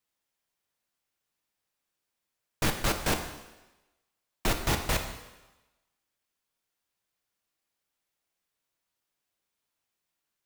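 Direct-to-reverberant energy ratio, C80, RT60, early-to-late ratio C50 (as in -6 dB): 4.5 dB, 9.5 dB, 1.1 s, 8.0 dB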